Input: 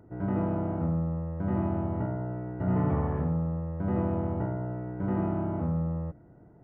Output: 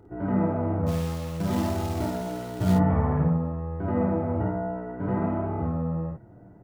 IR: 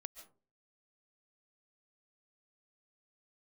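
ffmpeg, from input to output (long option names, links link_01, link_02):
-filter_complex "[0:a]asplit=3[link_01][link_02][link_03];[link_01]afade=type=out:start_time=0.86:duration=0.02[link_04];[link_02]acrusher=bits=4:mode=log:mix=0:aa=0.000001,afade=type=in:start_time=0.86:duration=0.02,afade=type=out:start_time=2.72:duration=0.02[link_05];[link_03]afade=type=in:start_time=2.72:duration=0.02[link_06];[link_04][link_05][link_06]amix=inputs=3:normalize=0,flanger=delay=2.4:depth=7.9:regen=32:speed=0.54:shape=sinusoidal,asplit=2[link_07][link_08];[link_08]aecho=0:1:28|53:0.316|0.668[link_09];[link_07][link_09]amix=inputs=2:normalize=0,volume=6.5dB"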